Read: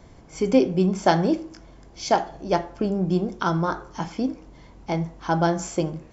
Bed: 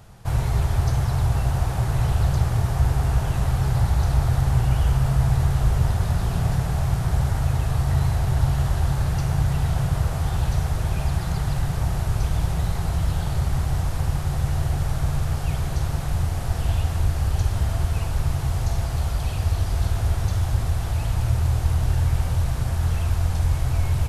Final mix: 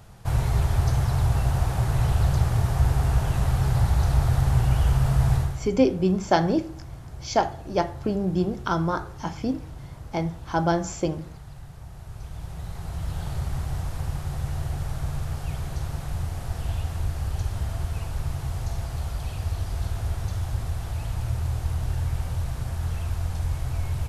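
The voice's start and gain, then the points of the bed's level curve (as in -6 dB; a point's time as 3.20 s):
5.25 s, -1.5 dB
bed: 5.36 s -1 dB
5.71 s -18.5 dB
11.88 s -18.5 dB
13.25 s -6 dB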